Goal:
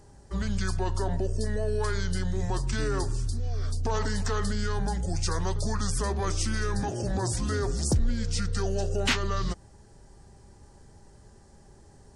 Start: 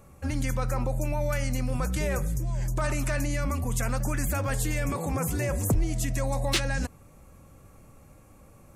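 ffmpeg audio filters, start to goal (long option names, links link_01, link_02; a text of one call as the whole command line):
ffmpeg -i in.wav -af "asetrate=31752,aresample=44100" out.wav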